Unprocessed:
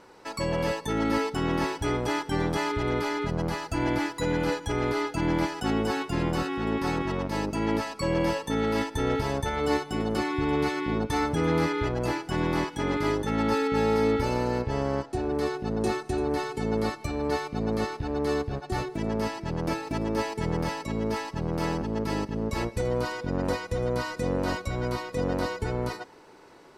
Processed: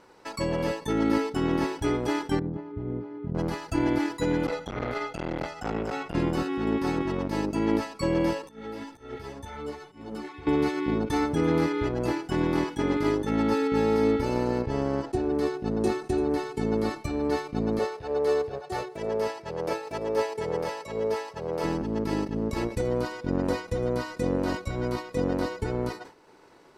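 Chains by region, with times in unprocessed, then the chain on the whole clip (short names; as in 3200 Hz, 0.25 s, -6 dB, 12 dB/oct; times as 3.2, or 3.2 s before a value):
2.39–3.35 band-pass 140 Hz, Q 0.86 + air absorption 89 m
4.46–6.15 LPF 3800 Hz 6 dB/oct + comb 1.5 ms, depth 85% + core saturation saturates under 770 Hz
8.42–10.47 compressor 5:1, threshold -30 dBFS + auto swell 0.154 s + ensemble effect
17.79–21.64 HPF 61 Hz + resonant low shelf 370 Hz -7 dB, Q 3
whole clip: dynamic EQ 310 Hz, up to +6 dB, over -38 dBFS, Q 1.2; transient shaper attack +3 dB, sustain -3 dB; sustainer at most 150 dB/s; gain -3 dB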